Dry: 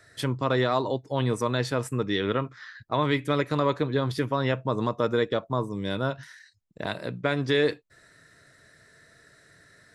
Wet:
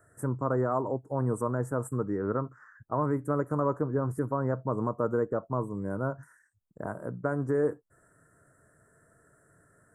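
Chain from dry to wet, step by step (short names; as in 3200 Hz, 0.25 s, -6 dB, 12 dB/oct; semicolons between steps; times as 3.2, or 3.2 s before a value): dynamic EQ 2300 Hz, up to -3 dB, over -39 dBFS, Q 0.9; Chebyshev band-stop 1400–8000 Hz, order 3; gain -2.5 dB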